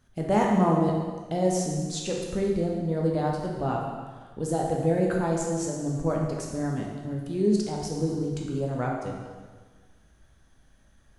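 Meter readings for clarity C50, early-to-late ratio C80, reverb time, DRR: 1.5 dB, 4.0 dB, 1.5 s, -1.5 dB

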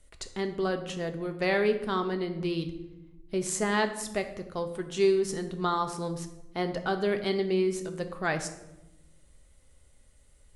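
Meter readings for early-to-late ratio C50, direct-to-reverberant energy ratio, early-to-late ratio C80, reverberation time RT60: 11.0 dB, 6.5 dB, 13.0 dB, 1.0 s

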